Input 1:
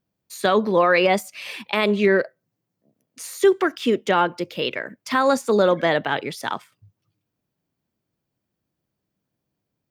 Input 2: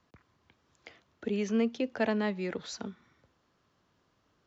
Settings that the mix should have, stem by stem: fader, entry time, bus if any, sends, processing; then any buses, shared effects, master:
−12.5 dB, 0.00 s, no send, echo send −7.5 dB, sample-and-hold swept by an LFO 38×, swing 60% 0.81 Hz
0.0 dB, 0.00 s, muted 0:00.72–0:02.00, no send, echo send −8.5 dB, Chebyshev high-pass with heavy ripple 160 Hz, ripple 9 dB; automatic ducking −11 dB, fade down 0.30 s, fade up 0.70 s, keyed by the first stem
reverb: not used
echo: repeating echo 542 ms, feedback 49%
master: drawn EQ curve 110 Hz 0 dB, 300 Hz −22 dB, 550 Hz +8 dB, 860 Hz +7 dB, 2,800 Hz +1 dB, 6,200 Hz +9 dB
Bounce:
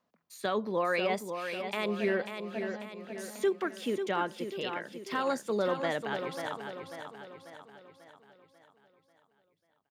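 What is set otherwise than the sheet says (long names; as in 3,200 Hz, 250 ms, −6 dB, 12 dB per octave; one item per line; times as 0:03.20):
stem 1: missing sample-and-hold swept by an LFO 38×, swing 60% 0.81 Hz
master: missing drawn EQ curve 110 Hz 0 dB, 300 Hz −22 dB, 550 Hz +8 dB, 860 Hz +7 dB, 2,800 Hz +1 dB, 6,200 Hz +9 dB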